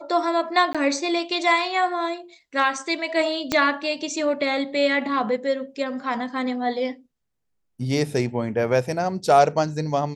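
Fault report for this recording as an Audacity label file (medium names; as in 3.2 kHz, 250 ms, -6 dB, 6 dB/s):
0.730000	0.750000	dropout 16 ms
3.520000	3.520000	pop -7 dBFS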